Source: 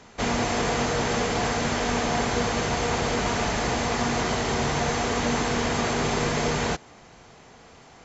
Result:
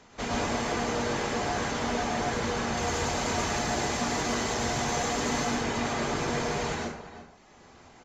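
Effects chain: peaking EQ 110 Hz -3.5 dB 0.9 oct; echo from a far wall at 59 m, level -11 dB; saturation -17.5 dBFS, distortion -20 dB; reverb removal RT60 1.1 s; 2.77–5.45 s: treble shelf 6 kHz +10 dB; plate-style reverb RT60 0.68 s, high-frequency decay 0.65×, pre-delay 90 ms, DRR -3 dB; trim -5.5 dB

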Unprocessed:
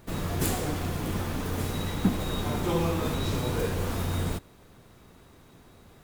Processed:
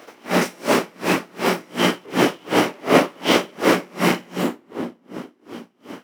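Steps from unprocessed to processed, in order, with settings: rattle on loud lows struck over -27 dBFS, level -30 dBFS; chorus voices 4, 0.42 Hz, delay 21 ms, depth 2.3 ms; reverberation RT60 3.5 s, pre-delay 3 ms, DRR 1 dB; full-wave rectifier; formant shift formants -4 st; Bessel high-pass 290 Hz, order 4; loudness maximiser +16 dB; logarithmic tremolo 2.7 Hz, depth 34 dB

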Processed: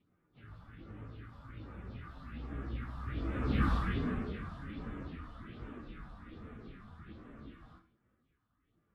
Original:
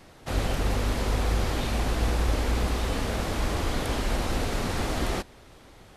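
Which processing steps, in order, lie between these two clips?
Doppler pass-by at 2.47 s, 33 m/s, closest 2.5 m; high-pass 140 Hz 6 dB/octave; high-order bell 610 Hz -11.5 dB; in parallel at -2 dB: compression, threshold -53 dBFS, peak gain reduction 21 dB; on the sum: feedback comb 330 Hz, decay 0.25 s, harmonics odd, mix 50%; phase shifter stages 4, 1.9 Hz, lowest notch 350–4600 Hz; small resonant body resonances 430/1200/3500 Hz, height 7 dB, ringing for 30 ms; plain phase-vocoder stretch 1.5×; distance through air 480 m; reverberation RT60 0.35 s, pre-delay 49 ms, DRR 10.5 dB; trim +15.5 dB

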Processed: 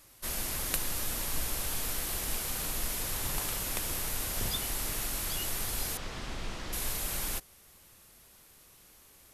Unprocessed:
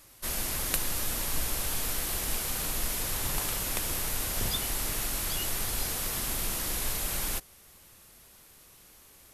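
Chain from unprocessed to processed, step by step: 5.97–6.73 s: distance through air 140 m; trim -2.5 dB

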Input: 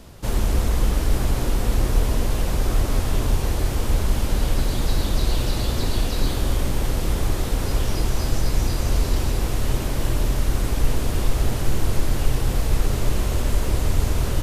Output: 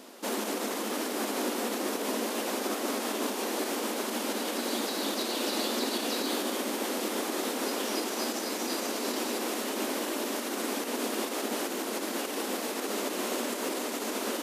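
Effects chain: peak limiter -13 dBFS, peak gain reduction 6.5 dB; brick-wall FIR high-pass 210 Hz

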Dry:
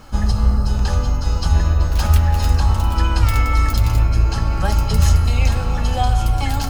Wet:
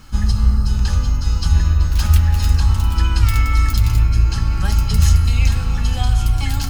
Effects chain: peaking EQ 600 Hz -13 dB 1.6 oct; trim +1.5 dB

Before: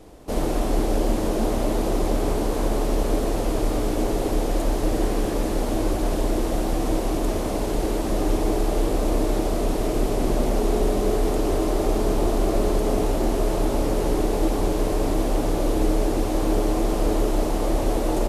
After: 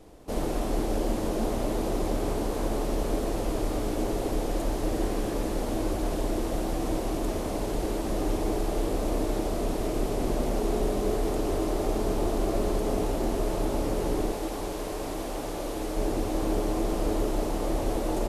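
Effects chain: 14.32–15.97 s: bass shelf 430 Hz -8.5 dB; on a send: reverberation RT60 0.85 s, pre-delay 6 ms, DRR 18 dB; on the sum: trim -5 dB

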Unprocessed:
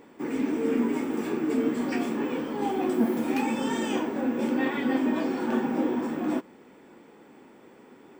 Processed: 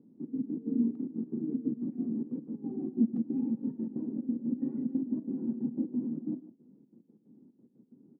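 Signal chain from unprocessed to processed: trance gate "xxx.x.x." 182 bpm -12 dB; Butterworth band-pass 180 Hz, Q 1.3; speakerphone echo 150 ms, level -14 dB

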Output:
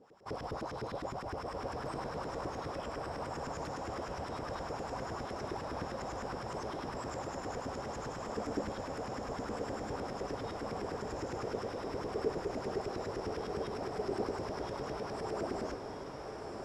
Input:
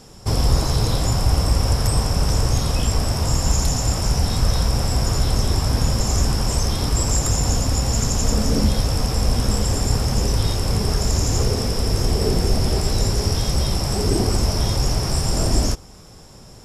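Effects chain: LFO band-pass saw up 9.8 Hz 310–1900 Hz; echo that smears into a reverb 1343 ms, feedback 46%, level -4 dB; trim -6 dB

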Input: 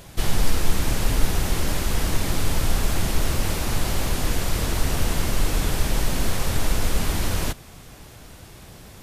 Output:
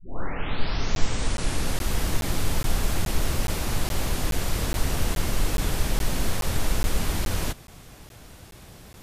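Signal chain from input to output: tape start-up on the opening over 1.92 s; crackling interface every 0.42 s, samples 512, zero, from 0.95 s; trim -2.5 dB

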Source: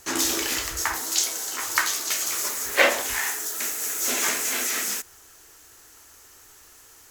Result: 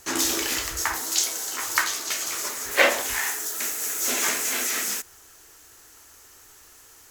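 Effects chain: 1.84–2.71 s: treble shelf 7.7 kHz -5.5 dB

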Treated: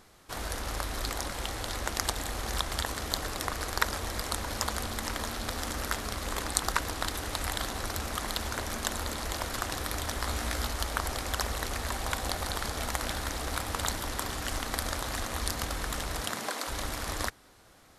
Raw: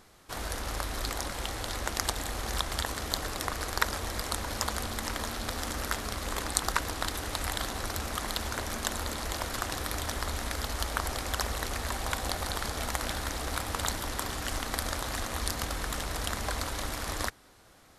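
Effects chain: 10.22–10.69 s: doubling 17 ms -4 dB; 16.20–16.67 s: high-pass 86 Hz -> 320 Hz 24 dB/octave

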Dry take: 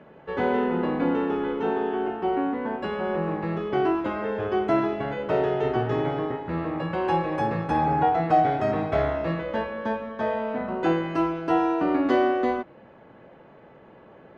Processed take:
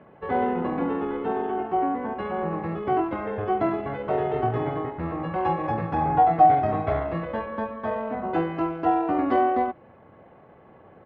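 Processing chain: peaking EQ 92 Hz +10 dB 0.44 oct; tempo 1.3×; distance through air 230 m; small resonant body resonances 750/1100/2100 Hz, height 8 dB; trim -1.5 dB

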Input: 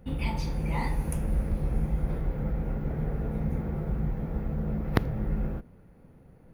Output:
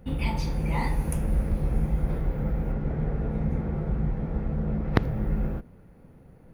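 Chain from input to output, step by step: 2.72–5.03 s: distance through air 53 m; trim +2.5 dB

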